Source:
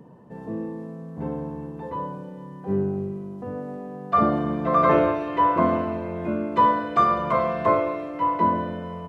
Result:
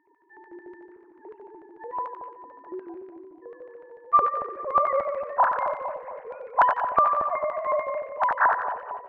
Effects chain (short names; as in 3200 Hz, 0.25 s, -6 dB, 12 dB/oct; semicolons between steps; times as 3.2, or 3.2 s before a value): sine-wave speech; LFO band-pass square 6.8 Hz 660–1800 Hz; split-band echo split 960 Hz, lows 0.227 s, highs 90 ms, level -6.5 dB; gain +3.5 dB